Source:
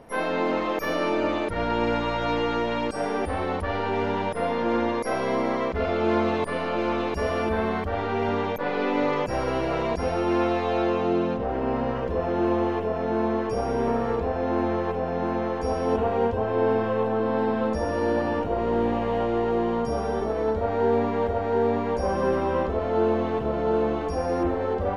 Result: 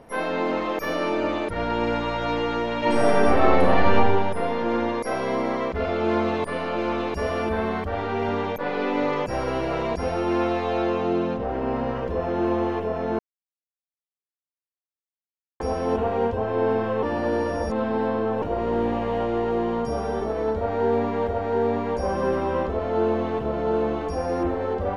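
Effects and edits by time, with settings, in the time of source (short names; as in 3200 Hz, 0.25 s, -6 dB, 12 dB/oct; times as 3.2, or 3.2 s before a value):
2.78–3.95 reverb throw, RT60 1.3 s, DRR -7.5 dB
13.19–15.6 mute
17.03–18.42 reverse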